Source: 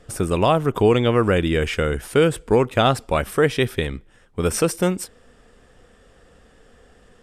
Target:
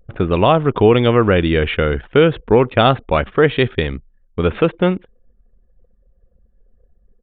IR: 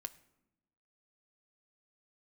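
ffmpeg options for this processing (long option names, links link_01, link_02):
-af "aresample=8000,aresample=44100,anlmdn=0.398,volume=4.5dB"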